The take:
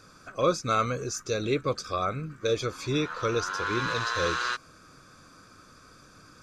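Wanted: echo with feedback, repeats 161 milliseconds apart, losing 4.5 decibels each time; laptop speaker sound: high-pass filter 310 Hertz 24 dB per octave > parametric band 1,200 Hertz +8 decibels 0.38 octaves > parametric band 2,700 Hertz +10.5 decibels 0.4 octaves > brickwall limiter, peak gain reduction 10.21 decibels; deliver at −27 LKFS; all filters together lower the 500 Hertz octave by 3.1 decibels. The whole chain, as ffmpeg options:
ffmpeg -i in.wav -af "highpass=frequency=310:width=0.5412,highpass=frequency=310:width=1.3066,equalizer=frequency=500:width_type=o:gain=-3.5,equalizer=frequency=1200:width_type=o:width=0.38:gain=8,equalizer=frequency=2700:width_type=o:width=0.4:gain=10.5,aecho=1:1:161|322|483|644|805|966|1127|1288|1449:0.596|0.357|0.214|0.129|0.0772|0.0463|0.0278|0.0167|0.01,volume=1dB,alimiter=limit=-17.5dB:level=0:latency=1" out.wav

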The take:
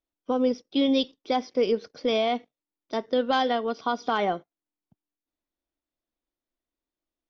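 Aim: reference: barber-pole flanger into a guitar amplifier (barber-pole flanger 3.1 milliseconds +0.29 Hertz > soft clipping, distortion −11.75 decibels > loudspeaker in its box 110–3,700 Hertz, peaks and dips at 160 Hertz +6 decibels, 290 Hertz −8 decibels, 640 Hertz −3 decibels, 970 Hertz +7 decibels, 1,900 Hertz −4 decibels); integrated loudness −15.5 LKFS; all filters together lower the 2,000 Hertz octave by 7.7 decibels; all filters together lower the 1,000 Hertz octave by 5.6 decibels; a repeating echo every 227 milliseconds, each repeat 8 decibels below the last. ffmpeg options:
ffmpeg -i in.wav -filter_complex "[0:a]equalizer=frequency=1000:width_type=o:gain=-9,equalizer=frequency=2000:width_type=o:gain=-5.5,aecho=1:1:227|454|681|908|1135:0.398|0.159|0.0637|0.0255|0.0102,asplit=2[link_01][link_02];[link_02]adelay=3.1,afreqshift=0.29[link_03];[link_01][link_03]amix=inputs=2:normalize=1,asoftclip=threshold=-25.5dB,highpass=110,equalizer=frequency=160:width_type=q:width=4:gain=6,equalizer=frequency=290:width_type=q:width=4:gain=-8,equalizer=frequency=640:width_type=q:width=4:gain=-3,equalizer=frequency=970:width_type=q:width=4:gain=7,equalizer=frequency=1900:width_type=q:width=4:gain=-4,lowpass=frequency=3700:width=0.5412,lowpass=frequency=3700:width=1.3066,volume=21dB" out.wav

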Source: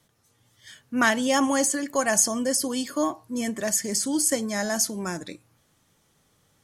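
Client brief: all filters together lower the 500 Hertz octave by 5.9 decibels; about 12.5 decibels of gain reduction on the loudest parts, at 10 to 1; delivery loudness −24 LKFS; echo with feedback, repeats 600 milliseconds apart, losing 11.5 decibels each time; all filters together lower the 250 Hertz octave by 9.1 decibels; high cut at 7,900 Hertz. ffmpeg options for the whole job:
ffmpeg -i in.wav -af "lowpass=7900,equalizer=frequency=250:width_type=o:gain=-9,equalizer=frequency=500:width_type=o:gain=-5.5,acompressor=threshold=-30dB:ratio=10,aecho=1:1:600|1200|1800:0.266|0.0718|0.0194,volume=10dB" out.wav

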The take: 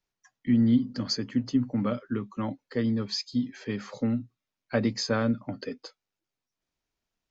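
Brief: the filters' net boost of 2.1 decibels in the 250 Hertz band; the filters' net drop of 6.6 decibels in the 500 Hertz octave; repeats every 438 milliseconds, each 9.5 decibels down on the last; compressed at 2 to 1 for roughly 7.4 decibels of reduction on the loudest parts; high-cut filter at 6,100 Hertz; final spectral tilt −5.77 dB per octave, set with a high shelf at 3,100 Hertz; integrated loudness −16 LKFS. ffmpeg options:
ffmpeg -i in.wav -af "lowpass=6100,equalizer=frequency=250:width_type=o:gain=4,equalizer=frequency=500:width_type=o:gain=-9,highshelf=frequency=3100:gain=-4.5,acompressor=threshold=-30dB:ratio=2,aecho=1:1:438|876|1314|1752:0.335|0.111|0.0365|0.012,volume=16.5dB" out.wav

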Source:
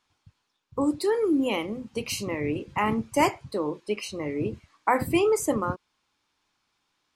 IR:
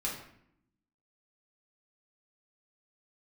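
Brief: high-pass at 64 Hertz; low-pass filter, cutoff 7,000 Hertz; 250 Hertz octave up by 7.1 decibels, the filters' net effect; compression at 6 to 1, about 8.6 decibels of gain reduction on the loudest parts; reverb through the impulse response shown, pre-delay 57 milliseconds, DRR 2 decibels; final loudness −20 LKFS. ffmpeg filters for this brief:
-filter_complex "[0:a]highpass=64,lowpass=7000,equalizer=frequency=250:width_type=o:gain=9,acompressor=threshold=-22dB:ratio=6,asplit=2[link_01][link_02];[1:a]atrim=start_sample=2205,adelay=57[link_03];[link_02][link_03]afir=irnorm=-1:irlink=0,volume=-6dB[link_04];[link_01][link_04]amix=inputs=2:normalize=0,volume=5.5dB"

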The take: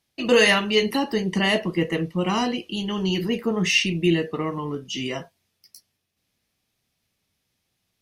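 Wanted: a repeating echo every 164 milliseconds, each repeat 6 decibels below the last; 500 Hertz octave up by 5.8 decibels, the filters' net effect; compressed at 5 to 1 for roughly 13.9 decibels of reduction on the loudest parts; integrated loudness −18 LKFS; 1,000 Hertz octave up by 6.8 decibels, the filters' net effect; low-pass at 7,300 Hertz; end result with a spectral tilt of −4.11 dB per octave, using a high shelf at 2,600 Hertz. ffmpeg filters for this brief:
ffmpeg -i in.wav -af "lowpass=7300,equalizer=frequency=500:width_type=o:gain=5.5,equalizer=frequency=1000:width_type=o:gain=7.5,highshelf=frequency=2600:gain=-5.5,acompressor=threshold=-23dB:ratio=5,aecho=1:1:164|328|492|656|820|984:0.501|0.251|0.125|0.0626|0.0313|0.0157,volume=8dB" out.wav

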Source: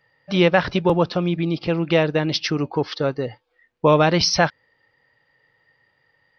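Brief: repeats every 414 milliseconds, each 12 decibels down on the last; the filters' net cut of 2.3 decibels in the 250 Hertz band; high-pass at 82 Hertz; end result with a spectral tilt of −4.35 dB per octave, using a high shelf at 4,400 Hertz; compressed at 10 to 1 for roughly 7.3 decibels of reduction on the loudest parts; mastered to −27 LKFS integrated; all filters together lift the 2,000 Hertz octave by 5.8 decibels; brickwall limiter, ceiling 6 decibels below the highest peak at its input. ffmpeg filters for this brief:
ffmpeg -i in.wav -af "highpass=82,equalizer=frequency=250:width_type=o:gain=-4,equalizer=frequency=2000:width_type=o:gain=6.5,highshelf=frequency=4400:gain=4.5,acompressor=threshold=-17dB:ratio=10,alimiter=limit=-12.5dB:level=0:latency=1,aecho=1:1:414|828|1242:0.251|0.0628|0.0157,volume=-2dB" out.wav

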